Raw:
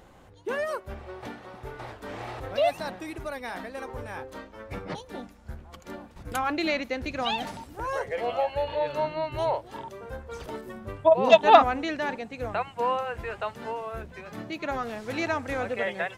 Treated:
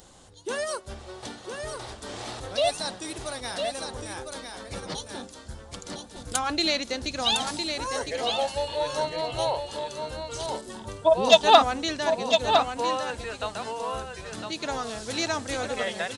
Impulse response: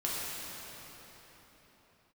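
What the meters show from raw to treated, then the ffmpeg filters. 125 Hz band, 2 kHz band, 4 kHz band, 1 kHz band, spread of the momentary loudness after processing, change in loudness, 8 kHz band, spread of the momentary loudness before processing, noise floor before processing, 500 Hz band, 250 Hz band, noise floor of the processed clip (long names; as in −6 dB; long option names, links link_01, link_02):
0.0 dB, 0.0 dB, +10.0 dB, 0.0 dB, 16 LU, +1.0 dB, +15.0 dB, 16 LU, −52 dBFS, 0.0 dB, 0.0 dB, −46 dBFS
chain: -af "aecho=1:1:1007:0.501,aresample=22050,aresample=44100,aexciter=amount=3.6:drive=7.8:freq=3300,volume=-1dB"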